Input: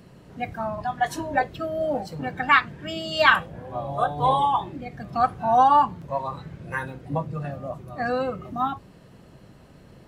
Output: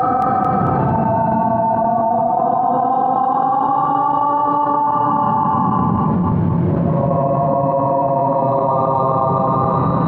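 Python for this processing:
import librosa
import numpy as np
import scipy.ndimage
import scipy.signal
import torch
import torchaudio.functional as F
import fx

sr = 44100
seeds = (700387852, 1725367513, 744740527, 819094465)

y = fx.octave_divider(x, sr, octaves=1, level_db=-3.0)
y = scipy.signal.sosfilt(scipy.signal.butter(4, 120.0, 'highpass', fs=sr, output='sos'), y)
y = fx.high_shelf(y, sr, hz=2300.0, db=-11.5)
y = fx.paulstretch(y, sr, seeds[0], factor=9.0, window_s=0.25, from_s=5.27)
y = fx.chopper(y, sr, hz=3.8, depth_pct=65, duty_pct=65)
y = fx.spacing_loss(y, sr, db_at_10k=35)
y = fx.echo_feedback(y, sr, ms=223, feedback_pct=48, wet_db=-13.5)
y = fx.env_flatten(y, sr, amount_pct=100)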